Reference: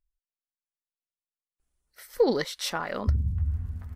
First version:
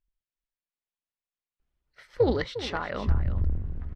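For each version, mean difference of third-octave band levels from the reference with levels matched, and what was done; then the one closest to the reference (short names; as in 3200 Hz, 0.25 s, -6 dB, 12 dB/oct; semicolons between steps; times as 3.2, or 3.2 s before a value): 6.5 dB: octaver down 2 oct, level -1 dB; Chebyshev low-pass 3100 Hz, order 2; on a send: echo 0.355 s -13 dB; on the sum: Doppler distortion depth 0.18 ms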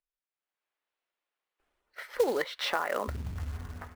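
9.5 dB: AGC gain up to 15 dB; three-band isolator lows -21 dB, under 330 Hz, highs -24 dB, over 3300 Hz; compressor 2.5:1, threshold -30 dBFS, peak gain reduction 14.5 dB; short-mantissa float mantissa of 2-bit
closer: first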